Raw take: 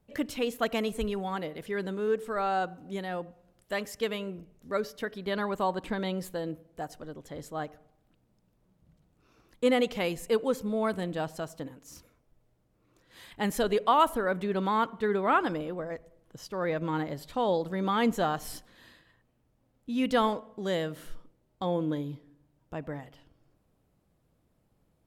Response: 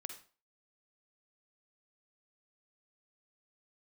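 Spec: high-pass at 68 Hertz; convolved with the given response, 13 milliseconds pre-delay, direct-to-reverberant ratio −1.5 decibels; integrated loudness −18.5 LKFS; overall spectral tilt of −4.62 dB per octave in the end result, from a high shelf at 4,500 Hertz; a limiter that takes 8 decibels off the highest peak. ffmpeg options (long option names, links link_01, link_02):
-filter_complex "[0:a]highpass=68,highshelf=frequency=4500:gain=7,alimiter=limit=-18dB:level=0:latency=1,asplit=2[link_01][link_02];[1:a]atrim=start_sample=2205,adelay=13[link_03];[link_02][link_03]afir=irnorm=-1:irlink=0,volume=5dB[link_04];[link_01][link_04]amix=inputs=2:normalize=0,volume=9.5dB"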